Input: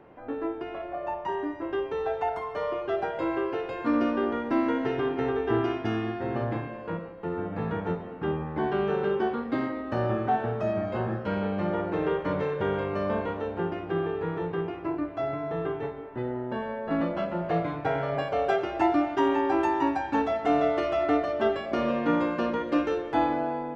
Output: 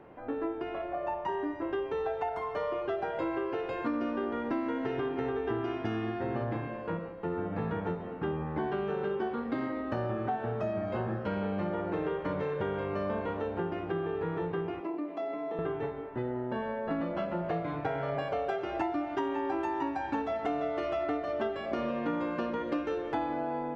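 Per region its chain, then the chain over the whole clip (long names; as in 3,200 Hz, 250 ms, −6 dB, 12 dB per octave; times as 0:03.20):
0:14.80–0:15.59: Butterworth high-pass 180 Hz 72 dB per octave + parametric band 1,500 Hz −12 dB 0.29 octaves + downward compressor 2 to 1, threshold −34 dBFS
whole clip: high-shelf EQ 5,100 Hz −4 dB; downward compressor, threshold −29 dBFS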